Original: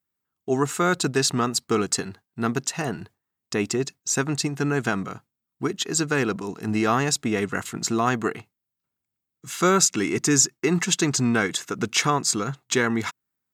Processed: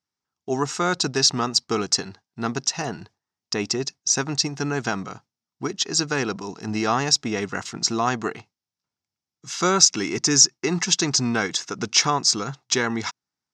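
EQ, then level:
low-pass with resonance 5,500 Hz, resonance Q 4.2
parametric band 840 Hz +5.5 dB 0.63 octaves
−2.5 dB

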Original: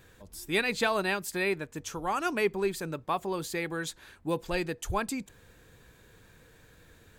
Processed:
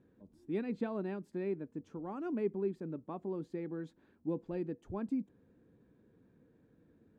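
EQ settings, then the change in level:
resonant band-pass 250 Hz, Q 2.1
+1.0 dB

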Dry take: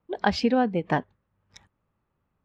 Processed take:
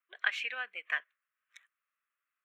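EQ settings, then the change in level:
high-pass filter 990 Hz 24 dB per octave
dynamic equaliser 2,400 Hz, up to +6 dB, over −49 dBFS, Q 2.6
phaser with its sweep stopped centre 2,100 Hz, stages 4
0.0 dB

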